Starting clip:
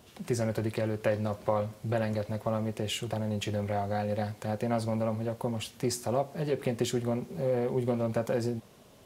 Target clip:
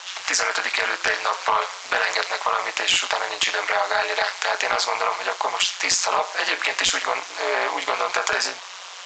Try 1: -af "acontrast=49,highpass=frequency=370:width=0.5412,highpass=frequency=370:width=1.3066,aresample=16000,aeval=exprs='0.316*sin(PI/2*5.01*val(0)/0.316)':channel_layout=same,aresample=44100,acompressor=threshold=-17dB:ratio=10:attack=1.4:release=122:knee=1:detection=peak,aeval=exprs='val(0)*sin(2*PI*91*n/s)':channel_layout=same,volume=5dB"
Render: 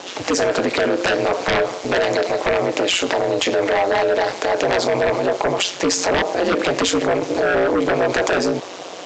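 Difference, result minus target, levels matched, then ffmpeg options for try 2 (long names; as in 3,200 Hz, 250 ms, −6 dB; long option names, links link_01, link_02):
500 Hz band +8.5 dB
-af "acontrast=49,highpass=frequency=1000:width=0.5412,highpass=frequency=1000:width=1.3066,aresample=16000,aeval=exprs='0.316*sin(PI/2*5.01*val(0)/0.316)':channel_layout=same,aresample=44100,acompressor=threshold=-17dB:ratio=10:attack=1.4:release=122:knee=1:detection=peak,aeval=exprs='val(0)*sin(2*PI*91*n/s)':channel_layout=same,volume=5dB"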